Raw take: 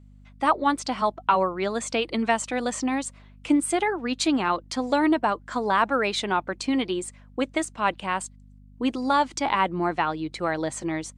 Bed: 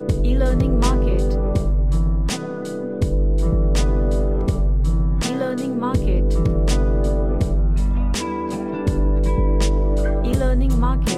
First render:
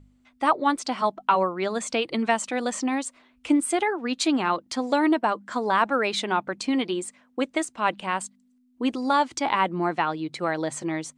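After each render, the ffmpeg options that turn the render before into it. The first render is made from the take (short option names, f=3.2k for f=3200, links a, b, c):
-af "bandreject=f=50:t=h:w=4,bandreject=f=100:t=h:w=4,bandreject=f=150:t=h:w=4,bandreject=f=200:t=h:w=4"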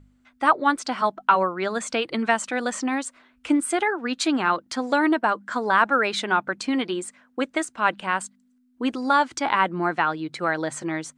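-af "equalizer=f=1.5k:w=2.5:g=7.5"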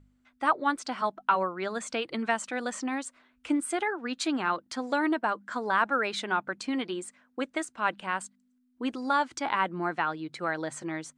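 -af "volume=-6.5dB"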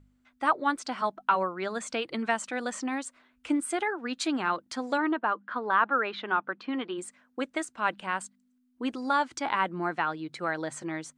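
-filter_complex "[0:a]asplit=3[a][b][c];[a]afade=t=out:st=4.97:d=0.02[d];[b]highpass=220,equalizer=f=650:t=q:w=4:g=-3,equalizer=f=1.2k:t=q:w=4:g=4,equalizer=f=2.2k:t=q:w=4:g=-4,lowpass=f=3.4k:w=0.5412,lowpass=f=3.4k:w=1.3066,afade=t=in:st=4.97:d=0.02,afade=t=out:st=6.97:d=0.02[e];[c]afade=t=in:st=6.97:d=0.02[f];[d][e][f]amix=inputs=3:normalize=0"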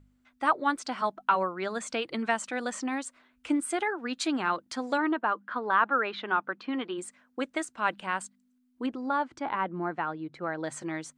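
-filter_complex "[0:a]asettb=1/sr,asplit=3[a][b][c];[a]atrim=end=8.864[d];[b]atrim=start=8.86:end=10.64,asetpts=PTS-STARTPTS,afade=t=in:d=0.004:c=qsin,afade=t=out:st=1.776:d=0.004:c=qsin,lowpass=f=1.1k:p=1[e];[c]atrim=start=10.636[f];[d][e]acrossfade=d=0.004:c1=hsin:c2=qsin[g];[g][f]acrossfade=d=0.004:c1=qsin:c2=hsin"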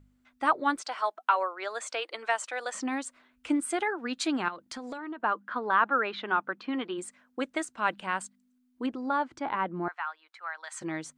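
-filter_complex "[0:a]asettb=1/sr,asplit=3[a][b][c];[a]atrim=end=0.814[d];[b]atrim=start=0.81:end=2.75,asetpts=PTS-STARTPTS,afade=t=in:d=0.004:c=qsin,afade=t=out:st=1.936:d=0.004:c=qsin,highpass=f=470:w=0.5412,highpass=f=470:w=1.3066[e];[c]atrim=start=2.746[f];[d][e]acrossfade=d=0.004:c1=hsin:c2=qsin[g];[g][f]acrossfade=d=0.004:c1=qsin:c2=hsin,asettb=1/sr,asplit=3[h][i][j];[h]atrim=end=4.484[k];[i]atrim=start=4.48:end=5.2,asetpts=PTS-STARTPTS,afade=t=in:d=0.004:c=qsin,afade=t=out:st=0.716:d=0.004:c=qsin,acompressor=threshold=-35dB:ratio=6:attack=3.2:release=140:knee=1:detection=peak[l];[j]atrim=start=5.196[m];[k][l]acrossfade=d=0.004:c1=hsin:c2=qsin[n];[n][m]acrossfade=d=0.004:c1=qsin:c2=hsin,asettb=1/sr,asplit=3[o][p][q];[o]atrim=end=9.884[r];[p]atrim=start=9.88:end=10.81,asetpts=PTS-STARTPTS,afade=t=in:d=0.004:c=qsin,afade=t=out:st=0.926:d=0.004:c=qsin,highpass=f=970:w=0.5412,highpass=f=970:w=1.3066[s];[q]atrim=start=10.806[t];[r][s]acrossfade=d=0.004:c1=hsin:c2=qsin[u];[u][t]acrossfade=d=0.004:c1=qsin:c2=hsin"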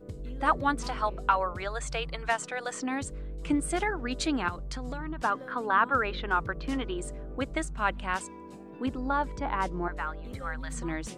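-filter_complex "[1:a]volume=-21dB[a];[0:a][a]amix=inputs=2:normalize=0"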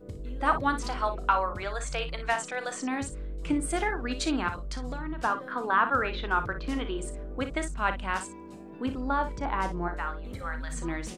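-af "aecho=1:1:36|58:0.237|0.282"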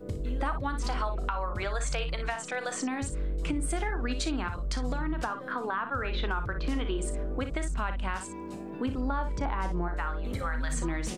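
-filter_complex "[0:a]acrossover=split=120[a][b];[b]acompressor=threshold=-35dB:ratio=4[c];[a][c]amix=inputs=2:normalize=0,asplit=2[d][e];[e]alimiter=level_in=4dB:limit=-24dB:level=0:latency=1:release=173,volume=-4dB,volume=-1dB[f];[d][f]amix=inputs=2:normalize=0"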